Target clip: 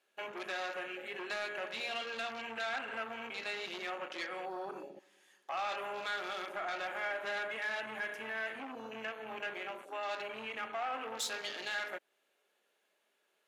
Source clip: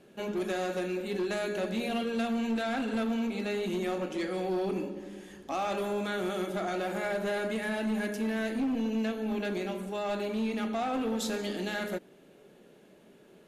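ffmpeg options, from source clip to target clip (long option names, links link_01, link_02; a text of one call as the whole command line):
ffmpeg -i in.wav -filter_complex "[0:a]highpass=1000,afwtdn=0.00501,asplit=2[link_01][link_02];[link_02]acompressor=threshold=-47dB:ratio=6,volume=-1dB[link_03];[link_01][link_03]amix=inputs=2:normalize=0,asoftclip=type=tanh:threshold=-28dB" out.wav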